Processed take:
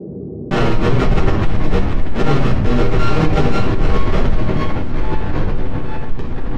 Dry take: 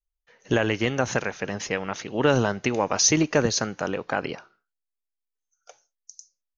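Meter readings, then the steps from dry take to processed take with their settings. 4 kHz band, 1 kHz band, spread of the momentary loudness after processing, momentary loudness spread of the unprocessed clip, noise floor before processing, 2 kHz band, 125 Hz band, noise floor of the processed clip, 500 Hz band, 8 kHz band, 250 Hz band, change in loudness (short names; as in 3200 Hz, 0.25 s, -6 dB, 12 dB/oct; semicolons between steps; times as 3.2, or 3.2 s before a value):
0.0 dB, +7.5 dB, 9 LU, 11 LU, -84 dBFS, +2.0 dB, +14.5 dB, -27 dBFS, +5.0 dB, n/a, +8.5 dB, +5.5 dB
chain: sample sorter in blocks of 32 samples; low shelf 91 Hz +8.5 dB; in parallel at -1 dB: limiter -14 dBFS, peak gain reduction 7 dB; on the sum: Schmitt trigger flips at -19 dBFS; band noise 79–420 Hz -59 dBFS; hard clip -26 dBFS, distortion -10 dB; air absorption 150 m; shoebox room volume 45 m³, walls mixed, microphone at 1.5 m; echoes that change speed 0.134 s, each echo -4 st, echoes 2, each echo -6 dB; on a send: swung echo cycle 0.715 s, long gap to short 1.5:1, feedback 64%, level -22 dB; on the sum: fast leveller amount 50%; gain -2.5 dB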